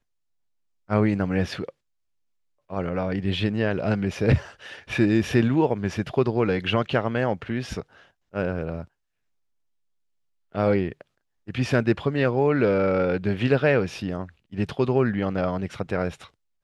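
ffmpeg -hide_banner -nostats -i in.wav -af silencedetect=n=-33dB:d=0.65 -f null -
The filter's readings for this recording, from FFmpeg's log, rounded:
silence_start: 0.00
silence_end: 0.89 | silence_duration: 0.89
silence_start: 1.69
silence_end: 2.70 | silence_duration: 1.01
silence_start: 8.83
silence_end: 10.55 | silence_duration: 1.72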